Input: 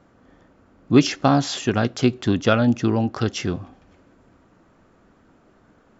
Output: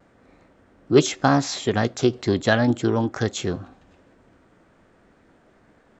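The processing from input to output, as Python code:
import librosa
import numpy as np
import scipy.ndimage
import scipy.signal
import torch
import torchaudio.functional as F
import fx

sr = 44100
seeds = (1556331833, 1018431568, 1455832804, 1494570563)

y = fx.formant_shift(x, sr, semitones=3)
y = fx.vibrato(y, sr, rate_hz=0.42, depth_cents=16.0)
y = y * 10.0 ** (-1.0 / 20.0)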